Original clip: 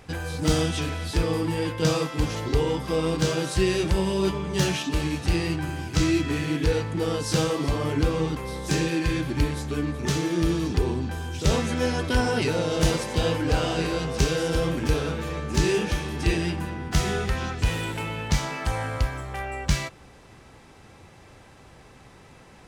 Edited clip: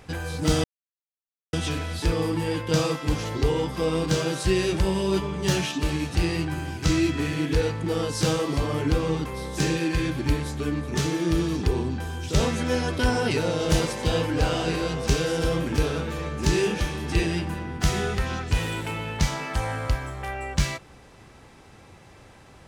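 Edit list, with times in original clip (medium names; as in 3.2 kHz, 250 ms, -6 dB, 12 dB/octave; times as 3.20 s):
0.64 s: insert silence 0.89 s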